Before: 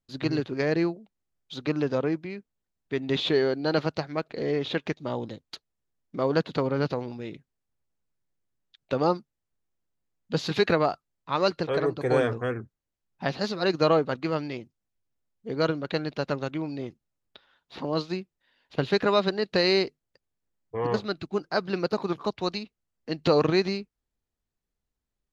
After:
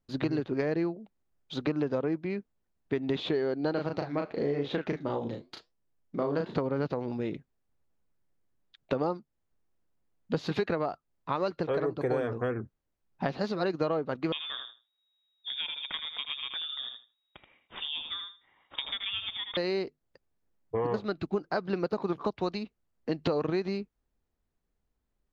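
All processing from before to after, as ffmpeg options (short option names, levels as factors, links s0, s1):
-filter_complex "[0:a]asettb=1/sr,asplit=3[s0][s1][s2];[s0]atrim=end=3.734[s3];[s1]atrim=start=3.73:end=6.56,asetpts=PTS-STARTPTS,afade=t=in:d=0.004:c=qsin,afade=t=out:st=2.826:d=0.004:c=qsin,flanger=delay=5.9:depth=6.8:regen=-80:speed=1:shape=triangular,asplit=2[s4][s5];[s5]adelay=35,volume=0.631[s6];[s4][s6]amix=inputs=2:normalize=0,atrim=end_sample=124803[s7];[s2]atrim=start=6.556[s8];[s3][s7]acrossfade=d=0.004:c1=hsin:c2=qsin[s9];[s9][s8]acrossfade=d=0.004:c1=qsin:c2=hsin,asettb=1/sr,asplit=3[s10][s11][s12];[s10]atrim=end=14.324[s13];[s11]atrim=start=14.32:end=19.57,asetpts=PTS-STARTPTS,afade=t=in:d=0.004:c=qsin,afade=t=out:st=5.246:d=0.004:c=qsin,aecho=1:1:79|158|237:0.398|0.0677|0.0115,atrim=end_sample=231525,lowpass=f=3200:t=q:w=0.5098,lowpass=f=3200:t=q:w=0.6013,lowpass=f=3200:t=q:w=0.9,lowpass=f=3200:t=q:w=2.563,afreqshift=-3800[s14];[s12]atrim=start=19.566[s15];[s13][s14]acrossfade=d=0.004:c1=hsin:c2=qsin[s16];[s16][s15]acrossfade=d=0.004:c1=qsin:c2=hsin,equalizer=f=120:w=1.5:g=-2.5,acompressor=threshold=0.0251:ratio=6,highshelf=f=2500:g=-11,volume=2"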